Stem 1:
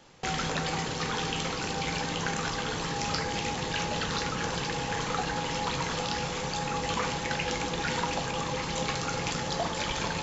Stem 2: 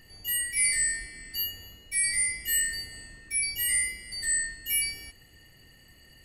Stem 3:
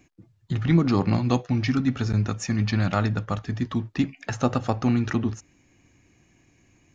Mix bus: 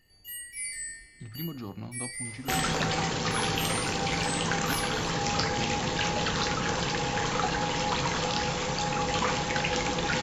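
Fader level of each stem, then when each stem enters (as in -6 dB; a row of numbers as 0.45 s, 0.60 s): +2.5 dB, -11.0 dB, -17.5 dB; 2.25 s, 0.00 s, 0.70 s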